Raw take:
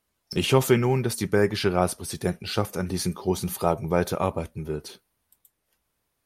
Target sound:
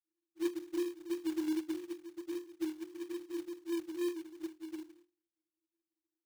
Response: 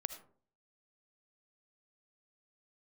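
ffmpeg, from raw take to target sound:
-af "asuperpass=centerf=330:order=20:qfactor=7.7,acrusher=bits=3:mode=log:mix=0:aa=0.000001,volume=2dB"

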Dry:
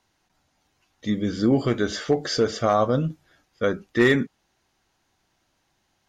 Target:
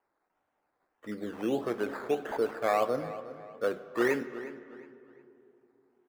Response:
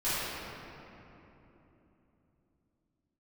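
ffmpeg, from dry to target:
-filter_complex "[0:a]aresample=11025,aresample=44100,acrusher=samples=12:mix=1:aa=0.000001:lfo=1:lforange=7.2:lforate=1.6,acrossover=split=310 2000:gain=0.126 1 0.178[link_01][link_02][link_03];[link_01][link_02][link_03]amix=inputs=3:normalize=0,asplit=2[link_04][link_05];[link_05]adelay=361,lowpass=frequency=4300:poles=1,volume=-15dB,asplit=2[link_06][link_07];[link_07]adelay=361,lowpass=frequency=4300:poles=1,volume=0.35,asplit=2[link_08][link_09];[link_09]adelay=361,lowpass=frequency=4300:poles=1,volume=0.35[link_10];[link_04][link_06][link_08][link_10]amix=inputs=4:normalize=0,asplit=2[link_11][link_12];[1:a]atrim=start_sample=2205,asetrate=57330,aresample=44100[link_13];[link_12][link_13]afir=irnorm=-1:irlink=0,volume=-21.5dB[link_14];[link_11][link_14]amix=inputs=2:normalize=0,volume=-5.5dB"

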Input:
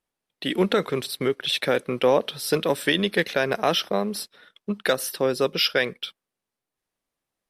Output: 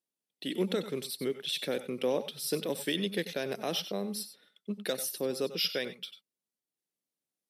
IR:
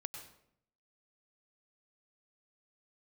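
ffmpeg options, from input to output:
-filter_complex "[0:a]highpass=200,equalizer=frequency=1200:width=0.51:gain=-14[link_01];[1:a]atrim=start_sample=2205,atrim=end_sample=4410[link_02];[link_01][link_02]afir=irnorm=-1:irlink=0"

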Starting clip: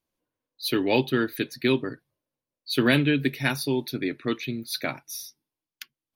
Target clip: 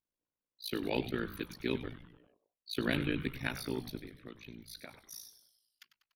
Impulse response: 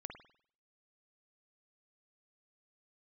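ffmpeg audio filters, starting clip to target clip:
-filter_complex "[0:a]asplit=3[link_01][link_02][link_03];[link_01]afade=type=out:start_time=3.97:duration=0.02[link_04];[link_02]acompressor=threshold=-34dB:ratio=6,afade=type=in:start_time=3.97:duration=0.02,afade=type=out:start_time=4.96:duration=0.02[link_05];[link_03]afade=type=in:start_time=4.96:duration=0.02[link_06];[link_04][link_05][link_06]amix=inputs=3:normalize=0,tremolo=f=56:d=0.947,asplit=7[link_07][link_08][link_09][link_10][link_11][link_12][link_13];[link_08]adelay=97,afreqshift=-140,volume=-12dB[link_14];[link_09]adelay=194,afreqshift=-280,volume=-17.4dB[link_15];[link_10]adelay=291,afreqshift=-420,volume=-22.7dB[link_16];[link_11]adelay=388,afreqshift=-560,volume=-28.1dB[link_17];[link_12]adelay=485,afreqshift=-700,volume=-33.4dB[link_18];[link_13]adelay=582,afreqshift=-840,volume=-38.8dB[link_19];[link_07][link_14][link_15][link_16][link_17][link_18][link_19]amix=inputs=7:normalize=0,volume=-8dB"

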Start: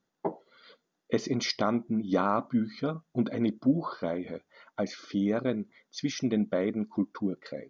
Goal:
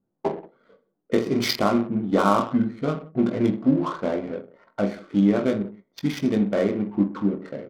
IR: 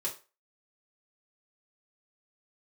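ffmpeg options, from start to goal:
-filter_complex "[0:a]aecho=1:1:20|46|79.8|123.7|180.9:0.631|0.398|0.251|0.158|0.1,asplit=2[link_01][link_02];[1:a]atrim=start_sample=2205,highshelf=frequency=4200:gain=8.5[link_03];[link_02][link_03]afir=irnorm=-1:irlink=0,volume=-14.5dB[link_04];[link_01][link_04]amix=inputs=2:normalize=0,adynamicsmooth=sensitivity=6.5:basefreq=570,volume=3.5dB"

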